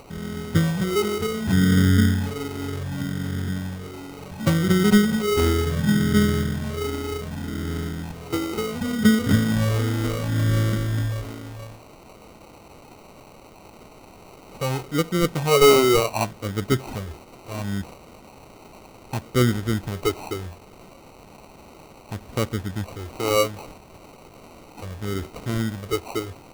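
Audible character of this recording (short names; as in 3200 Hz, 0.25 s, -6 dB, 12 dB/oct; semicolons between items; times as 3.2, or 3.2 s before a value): a quantiser's noise floor 8-bit, dither triangular; phasing stages 12, 0.68 Hz, lowest notch 170–1100 Hz; aliases and images of a low sample rate 1700 Hz, jitter 0%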